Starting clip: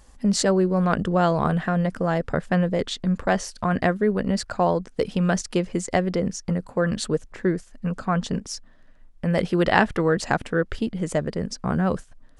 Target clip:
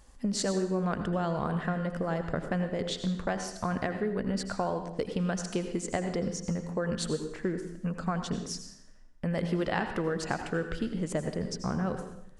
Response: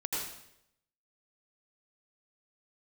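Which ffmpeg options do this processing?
-filter_complex "[0:a]acompressor=threshold=0.0794:ratio=6,asplit=2[s0][s1];[1:a]atrim=start_sample=2205[s2];[s1][s2]afir=irnorm=-1:irlink=0,volume=0.376[s3];[s0][s3]amix=inputs=2:normalize=0,volume=0.447"

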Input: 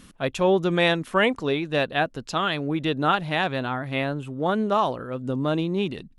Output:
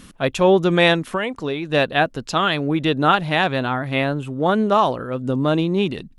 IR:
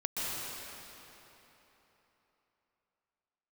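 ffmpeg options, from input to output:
-filter_complex "[0:a]asettb=1/sr,asplit=3[s0][s1][s2];[s0]atrim=end=0.994[s3];[s1]atrim=start=0.99:end=1.7,asetpts=PTS-STARTPTS,afade=t=in:d=0.004:c=qsin,afade=t=out:st=0.706:d=0.004:c=qsin,acompressor=threshold=0.0447:ratio=4[s4];[s2]atrim=start=1.696[s5];[s3][s4]acrossfade=d=0.004:c1=hsin:c2=qsin[s6];[s6][s5]acrossfade=d=0.004:c1=qsin:c2=hsin,volume=1.88"

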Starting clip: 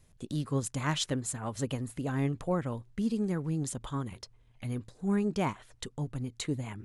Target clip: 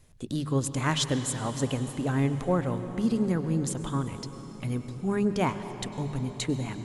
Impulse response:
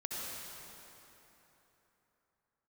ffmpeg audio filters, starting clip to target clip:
-filter_complex "[0:a]bandreject=f=50:t=h:w=6,bandreject=f=100:t=h:w=6,bandreject=f=150:t=h:w=6,bandreject=f=200:t=h:w=6,asplit=2[s0][s1];[1:a]atrim=start_sample=2205,asetrate=28665,aresample=44100,highshelf=f=9200:g=-8.5[s2];[s1][s2]afir=irnorm=-1:irlink=0,volume=0.237[s3];[s0][s3]amix=inputs=2:normalize=0,volume=1.41"

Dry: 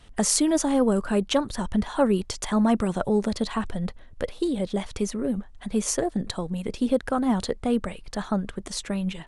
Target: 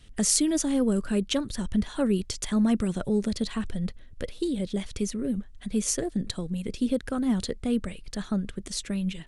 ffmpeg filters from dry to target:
-af "equalizer=f=870:w=0.95:g=-13"

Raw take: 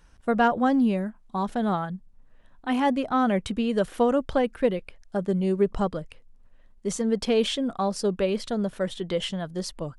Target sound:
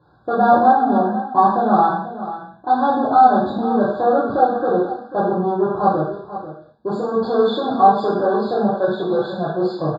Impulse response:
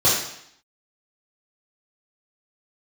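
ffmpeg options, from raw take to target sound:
-filter_complex "[0:a]alimiter=limit=0.126:level=0:latency=1,areverse,acompressor=mode=upward:threshold=0.0112:ratio=2.5,areverse,asoftclip=type=tanh:threshold=0.0531,asplit=2[s0][s1];[s1]adynamicsmooth=sensitivity=7:basefreq=650,volume=1[s2];[s0][s2]amix=inputs=2:normalize=0,highpass=180,equalizer=f=180:t=q:w=4:g=-7,equalizer=f=530:t=q:w=4:g=-7,equalizer=f=780:t=q:w=4:g=8,equalizer=f=2900:t=q:w=4:g=-7,lowpass=f=3700:w=0.5412,lowpass=f=3700:w=1.3066,aecho=1:1:490:0.224[s3];[1:a]atrim=start_sample=2205,afade=t=out:st=0.31:d=0.01,atrim=end_sample=14112[s4];[s3][s4]afir=irnorm=-1:irlink=0,afftfilt=real='re*eq(mod(floor(b*sr/1024/1700),2),0)':imag='im*eq(mod(floor(b*sr/1024/1700),2),0)':win_size=1024:overlap=0.75,volume=0.299"

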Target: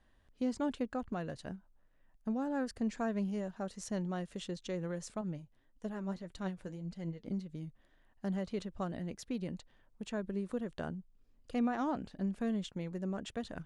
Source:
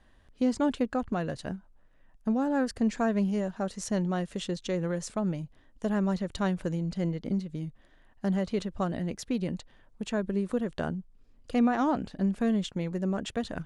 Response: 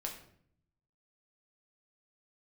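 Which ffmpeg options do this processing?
-filter_complex "[0:a]asettb=1/sr,asplit=3[s0][s1][s2];[s0]atrim=end=5.214[s3];[s1]atrim=start=5.21:end=7.28,asetpts=PTS-STARTPTS,afade=t=in:d=0.004:c=qsin,afade=t=out:st=2.066:d=0.004:c=qsin,flanger=delay=3.4:depth=7:regen=48:speed=1.7:shape=triangular[s4];[s2]atrim=start=7.276[s5];[s3][s4]acrossfade=d=0.004:c1=hsin:c2=qsin[s6];[s6][s5]acrossfade=d=0.004:c1=qsin:c2=hsin,volume=0.398"

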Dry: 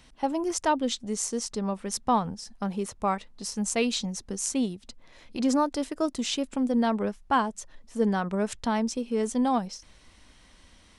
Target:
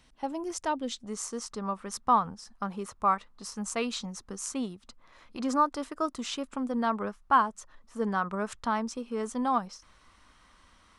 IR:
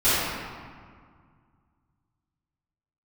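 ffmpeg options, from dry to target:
-af "asetnsamples=n=441:p=0,asendcmd='1.06 equalizer g 13',equalizer=f=1200:t=o:w=0.81:g=2,volume=0.473"

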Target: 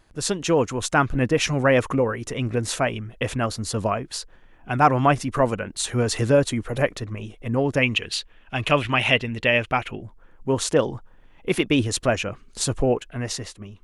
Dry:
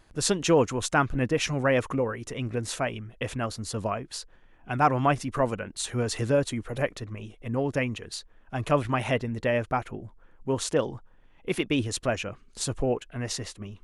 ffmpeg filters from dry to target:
-filter_complex "[0:a]asplit=3[s0][s1][s2];[s0]afade=t=out:st=7.82:d=0.02[s3];[s1]equalizer=f=2800:w=1.3:g=14,afade=t=in:st=7.82:d=0.02,afade=t=out:st=10.01:d=0.02[s4];[s2]afade=t=in:st=10.01:d=0.02[s5];[s3][s4][s5]amix=inputs=3:normalize=0,dynaudnorm=f=150:g=11:m=2"

